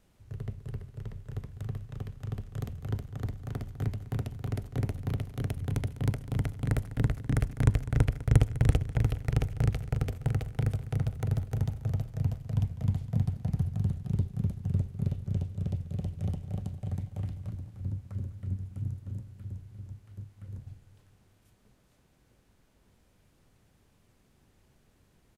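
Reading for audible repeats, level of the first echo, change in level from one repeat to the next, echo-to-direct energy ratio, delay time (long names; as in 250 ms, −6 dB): 4, −16.0 dB, −5.0 dB, −14.5 dB, 202 ms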